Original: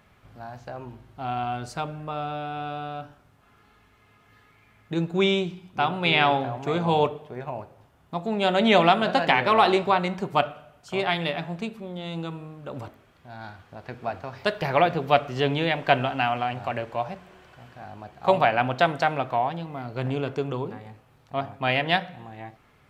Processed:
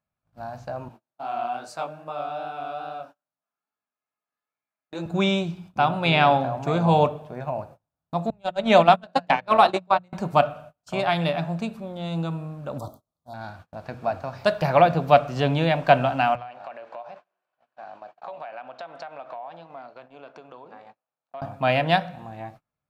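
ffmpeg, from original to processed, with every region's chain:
-filter_complex "[0:a]asettb=1/sr,asplit=3[s0][s1][s2];[s0]atrim=end=0.884[s3];[s1]atrim=start=0.88:end=5.06,asetpts=PTS-STARTPTS,afade=t=in:d=0.004:c=qsin,afade=t=out:st=4.176:d=0.004:c=qsin,highpass=350,flanger=delay=18:depth=7.8:speed=2.4[s4];[s2]atrim=start=5.056[s5];[s3][s4]acrossfade=d=0.004:c1=hsin:c2=qsin[s6];[s6][s5]acrossfade=d=0.004:c1=qsin:c2=hsin,asettb=1/sr,asplit=3[s7][s8][s9];[s7]atrim=end=8.304[s10];[s8]atrim=start=8.3:end=10.13,asetpts=PTS-STARTPTS,afade=t=in:d=0.004:c=qsin,afade=t=out:st=1.826:d=0.004:c=qsin,highpass=140,agate=range=0.02:threshold=0.1:ratio=16:release=100:detection=peak[s11];[s9]atrim=start=10.126[s12];[s10][s11]acrossfade=d=0.004:c1=hsin:c2=qsin[s13];[s13][s12]acrossfade=d=0.004:c1=qsin:c2=hsin,asettb=1/sr,asplit=3[s14][s15][s16];[s14]atrim=end=12.784[s17];[s15]atrim=start=12.78:end=13.34,asetpts=PTS-STARTPTS,afade=t=in:d=0.004:c=qsin,afade=t=out:st=0.556:d=0.004:c=qsin,asuperstop=centerf=2100:order=12:qfactor=1,highshelf=f=6500:g=11[s18];[s16]atrim=start=13.336[s19];[s17][s18]acrossfade=d=0.004:c1=hsin:c2=qsin[s20];[s20][s19]acrossfade=d=0.004:c1=qsin:c2=hsin,asettb=1/sr,asplit=3[s21][s22][s23];[s21]atrim=end=16.354[s24];[s22]atrim=start=16.35:end=21.42,asetpts=PTS-STARTPTS,afade=t=in:d=0.004:c=qsin,afade=t=out:st=5.066:d=0.004:c=qsin,acompressor=threshold=0.0158:ratio=8:attack=3.2:release=140:knee=1:detection=peak,highpass=460,lowpass=4000[s25];[s23]atrim=start=21.416[s26];[s24][s25]acrossfade=d=0.004:c1=hsin:c2=qsin[s27];[s27][s26]acrossfade=d=0.004:c1=qsin:c2=hsin,bandreject=f=60:t=h:w=6,bandreject=f=120:t=h:w=6,bandreject=f=180:t=h:w=6,agate=range=0.0282:threshold=0.00447:ratio=16:detection=peak,equalizer=f=160:t=o:w=0.33:g=5,equalizer=f=400:t=o:w=0.33:g=-8,equalizer=f=630:t=o:w=0.33:g=5,equalizer=f=2000:t=o:w=0.33:g=-7,equalizer=f=3150:t=o:w=0.33:g=-6,volume=1.33"

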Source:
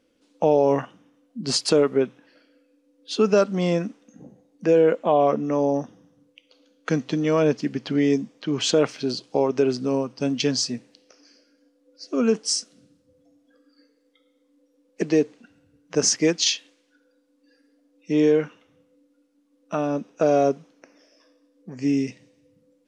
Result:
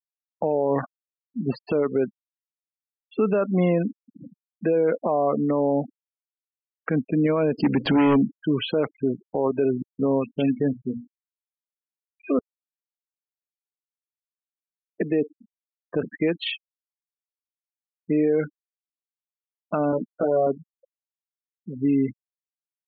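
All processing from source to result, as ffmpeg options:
-filter_complex "[0:a]asettb=1/sr,asplit=3[s0][s1][s2];[s0]atrim=end=7.584[s3];[s1]atrim=start=7.58:end=8.31,asetpts=PTS-STARTPTS,afade=t=in:d=0.004:c=qsin,afade=t=out:st=0.726:d=0.004:c=qsin,highpass=97,equalizer=f=4900:t=o:w=0.76:g=13,aeval=exprs='0.316*sin(PI/2*2.24*val(0)/0.316)':c=same[s4];[s2]atrim=start=8.306[s5];[s3][s4]acrossfade=d=0.004:c1=hsin:c2=qsin[s6];[s6][s5]acrossfade=d=0.004:c1=qsin:c2=hsin,asettb=1/sr,asplit=3[s7][s8][s9];[s7]atrim=end=9.824[s10];[s8]atrim=start=9.82:end=12.39,asetpts=PTS-STARTPTS,afade=t=in:d=0.004:c=qsin,afade=t=out:st=2.566:d=0.004:c=qsin,bandreject=f=60:t=h:w=6,bandreject=f=120:t=h:w=6,bandreject=f=180:t=h:w=6,bandreject=f=240:t=h:w=6,bandreject=f=300:t=h:w=6,acrossover=split=2000[s11][s12];[s11]adelay=170[s13];[s13][s12]amix=inputs=2:normalize=0,atrim=end_sample=113337[s14];[s9]atrim=start=12.386[s15];[s10][s14]acrossfade=d=0.004:c1=hsin:c2=qsin[s16];[s16][s15]acrossfade=d=0.004:c1=qsin:c2=hsin,asettb=1/sr,asplit=3[s17][s18][s19];[s17]atrim=end=19.914[s20];[s18]atrim=start=19.91:end=20.47,asetpts=PTS-STARTPTS,afade=t=in:d=0.004:c=qsin,afade=t=out:st=0.556:d=0.004:c=qsin,acompressor=threshold=0.0708:ratio=4:attack=3.2:release=140:knee=1:detection=peak,asplit=2[s21][s22];[s22]adelay=16,volume=0.708[s23];[s21][s23]amix=inputs=2:normalize=0,atrim=end_sample=24696[s24];[s19]atrim=start=20.466[s25];[s20][s24]acrossfade=d=0.004:c1=hsin:c2=qsin[s26];[s26][s25]acrossfade=d=0.004:c1=qsin:c2=hsin,lowpass=f=2700:w=0.5412,lowpass=f=2700:w=1.3066,afftfilt=real='re*gte(hypot(re,im),0.0355)':imag='im*gte(hypot(re,im),0.0355)':win_size=1024:overlap=0.75,alimiter=limit=0.133:level=0:latency=1:release=48,volume=1.58"

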